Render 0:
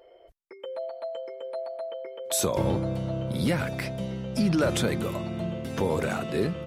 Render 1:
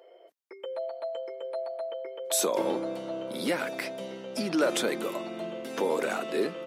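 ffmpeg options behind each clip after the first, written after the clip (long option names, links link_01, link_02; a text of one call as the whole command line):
ffmpeg -i in.wav -af "highpass=frequency=270:width=0.5412,highpass=frequency=270:width=1.3066" out.wav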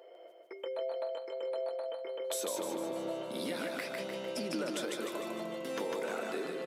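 ffmpeg -i in.wav -filter_complex "[0:a]acompressor=threshold=-36dB:ratio=6,asplit=2[link_01][link_02];[link_02]aecho=0:1:151|302|453|604|755|906|1057:0.708|0.368|0.191|0.0995|0.0518|0.0269|0.014[link_03];[link_01][link_03]amix=inputs=2:normalize=0" out.wav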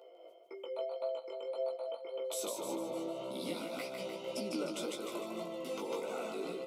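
ffmpeg -i in.wav -af "tremolo=f=3.7:d=0.29,flanger=delay=15:depth=3.4:speed=1.8,asuperstop=centerf=1700:order=4:qfactor=2.5,volume=2dB" out.wav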